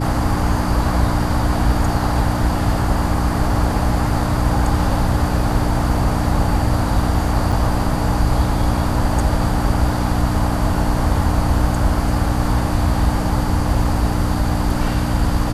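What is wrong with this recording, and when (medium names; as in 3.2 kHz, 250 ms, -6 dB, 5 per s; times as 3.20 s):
hum 60 Hz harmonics 5 -22 dBFS
7.52 s: dropout 4.5 ms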